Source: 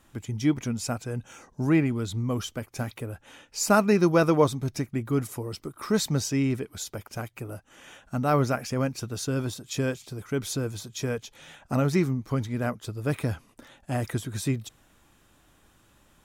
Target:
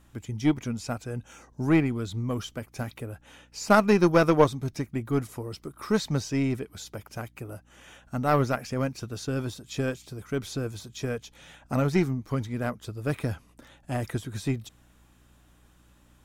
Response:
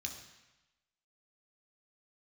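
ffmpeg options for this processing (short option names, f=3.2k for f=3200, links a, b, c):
-filter_complex "[0:a]aeval=exprs='val(0)+0.00141*(sin(2*PI*60*n/s)+sin(2*PI*2*60*n/s)/2+sin(2*PI*3*60*n/s)/3+sin(2*PI*4*60*n/s)/4+sin(2*PI*5*60*n/s)/5)':c=same,acrossover=split=5500[a][b];[b]acompressor=threshold=-43dB:ratio=4:attack=1:release=60[c];[a][c]amix=inputs=2:normalize=0,aeval=exprs='0.422*(cos(1*acos(clip(val(0)/0.422,-1,1)))-cos(1*PI/2))+0.0335*(cos(3*acos(clip(val(0)/0.422,-1,1)))-cos(3*PI/2))+0.0188*(cos(4*acos(clip(val(0)/0.422,-1,1)))-cos(4*PI/2))+0.0106*(cos(7*acos(clip(val(0)/0.422,-1,1)))-cos(7*PI/2))':c=same,volume=2.5dB"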